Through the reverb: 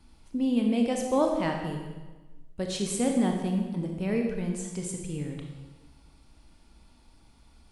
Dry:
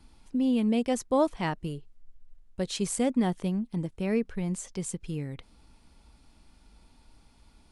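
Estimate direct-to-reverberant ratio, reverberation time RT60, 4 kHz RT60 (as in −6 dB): 2.0 dB, 1.3 s, 1.1 s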